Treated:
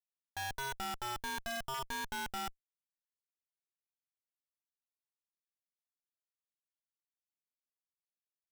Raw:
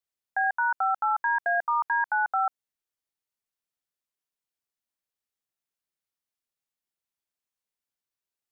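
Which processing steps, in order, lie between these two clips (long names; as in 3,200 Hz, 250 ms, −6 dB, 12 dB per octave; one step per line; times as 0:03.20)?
pitch vibrato 0.52 Hz 26 cents
comparator with hysteresis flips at −47 dBFS
level −6.5 dB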